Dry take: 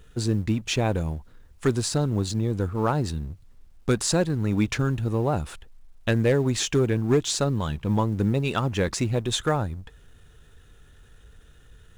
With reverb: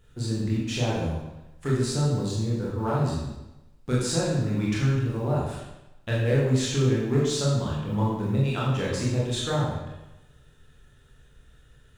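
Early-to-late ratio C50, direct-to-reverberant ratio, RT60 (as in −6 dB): 0.5 dB, −6.0 dB, 0.95 s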